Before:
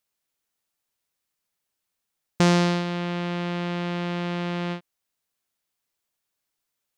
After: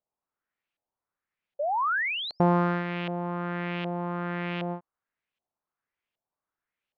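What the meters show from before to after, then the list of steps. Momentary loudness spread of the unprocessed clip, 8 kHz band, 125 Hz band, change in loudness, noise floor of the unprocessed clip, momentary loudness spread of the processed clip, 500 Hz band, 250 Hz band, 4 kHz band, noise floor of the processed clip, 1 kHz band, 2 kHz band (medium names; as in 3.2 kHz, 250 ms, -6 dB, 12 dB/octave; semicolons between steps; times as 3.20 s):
9 LU, under -30 dB, -4.5 dB, -3.0 dB, -82 dBFS, 9 LU, -1.5 dB, -4.0 dB, -3.5 dB, under -85 dBFS, +3.0 dB, +2.0 dB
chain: painted sound rise, 1.59–2.43 s, 550–6000 Hz -29 dBFS; LFO low-pass saw up 1.3 Hz 660–3000 Hz; trim -4.5 dB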